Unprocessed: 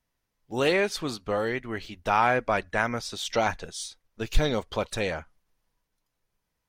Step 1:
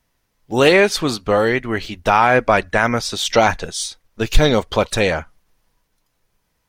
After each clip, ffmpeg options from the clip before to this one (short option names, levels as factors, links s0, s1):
-af "alimiter=level_in=4.22:limit=0.891:release=50:level=0:latency=1,volume=0.891"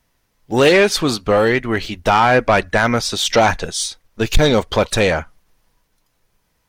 -af "asoftclip=type=tanh:threshold=0.398,volume=1.41"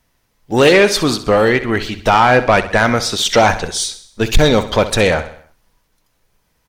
-af "aecho=1:1:65|130|195|260|325:0.211|0.106|0.0528|0.0264|0.0132,volume=1.26"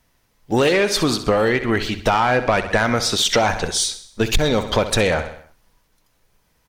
-af "acompressor=threshold=0.2:ratio=6"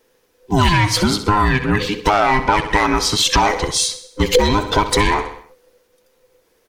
-af "afftfilt=real='real(if(between(b,1,1008),(2*floor((b-1)/24)+1)*24-b,b),0)':imag='imag(if(between(b,1,1008),(2*floor((b-1)/24)+1)*24-b,b),0)*if(between(b,1,1008),-1,1)':win_size=2048:overlap=0.75,volume=1.33"